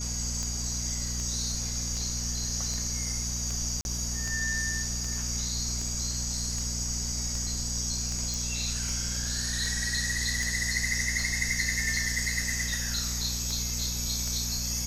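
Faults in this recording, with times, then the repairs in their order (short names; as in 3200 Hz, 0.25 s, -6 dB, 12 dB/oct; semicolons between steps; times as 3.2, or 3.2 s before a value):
hum 60 Hz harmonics 4 -35 dBFS
tick 78 rpm -21 dBFS
tone 6600 Hz -37 dBFS
3.81–3.85 gap 41 ms
8.34 pop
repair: de-click; notch 6600 Hz, Q 30; de-hum 60 Hz, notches 4; interpolate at 3.81, 41 ms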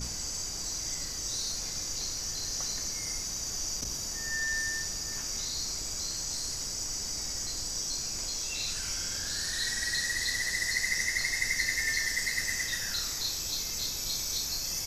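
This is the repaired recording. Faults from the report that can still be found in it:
none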